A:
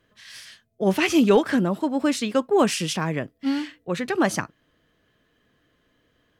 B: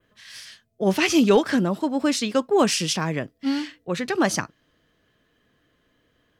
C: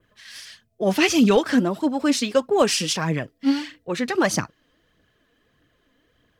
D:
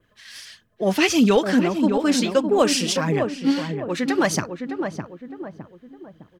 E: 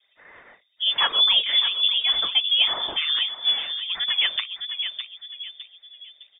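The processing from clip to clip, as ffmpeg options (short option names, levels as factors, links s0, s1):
-af "adynamicequalizer=threshold=0.00562:dfrequency=5200:dqfactor=1.3:tfrequency=5200:tqfactor=1.3:attack=5:release=100:ratio=0.375:range=3:mode=boostabove:tftype=bell"
-af "aphaser=in_gain=1:out_gain=1:delay=4.4:decay=0.46:speed=1.6:type=triangular"
-filter_complex "[0:a]asplit=2[s0][s1];[s1]adelay=610,lowpass=f=1100:p=1,volume=0.531,asplit=2[s2][s3];[s3]adelay=610,lowpass=f=1100:p=1,volume=0.45,asplit=2[s4][s5];[s5]adelay=610,lowpass=f=1100:p=1,volume=0.45,asplit=2[s6][s7];[s7]adelay=610,lowpass=f=1100:p=1,volume=0.45,asplit=2[s8][s9];[s9]adelay=610,lowpass=f=1100:p=1,volume=0.45[s10];[s0][s2][s4][s6][s8][s10]amix=inputs=6:normalize=0"
-af "lowpass=f=3100:t=q:w=0.5098,lowpass=f=3100:t=q:w=0.6013,lowpass=f=3100:t=q:w=0.9,lowpass=f=3100:t=q:w=2.563,afreqshift=-3700,volume=0.75"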